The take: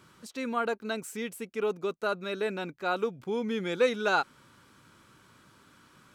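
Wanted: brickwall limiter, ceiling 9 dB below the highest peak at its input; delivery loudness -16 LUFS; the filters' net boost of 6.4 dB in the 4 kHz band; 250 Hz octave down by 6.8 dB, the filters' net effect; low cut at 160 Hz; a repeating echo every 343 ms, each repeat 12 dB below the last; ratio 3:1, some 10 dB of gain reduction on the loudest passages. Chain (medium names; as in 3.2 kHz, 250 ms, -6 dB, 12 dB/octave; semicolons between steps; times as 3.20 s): high-pass 160 Hz; peaking EQ 250 Hz -7.5 dB; peaking EQ 4 kHz +7 dB; compression 3:1, threshold -34 dBFS; peak limiter -30.5 dBFS; feedback delay 343 ms, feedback 25%, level -12 dB; trim +25 dB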